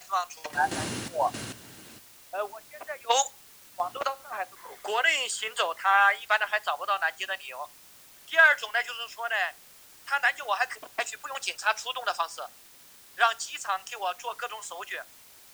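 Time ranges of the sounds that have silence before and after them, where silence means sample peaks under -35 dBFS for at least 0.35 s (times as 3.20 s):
2.33–3.27 s
3.79–7.65 s
8.30–9.50 s
10.08–12.46 s
13.18–15.02 s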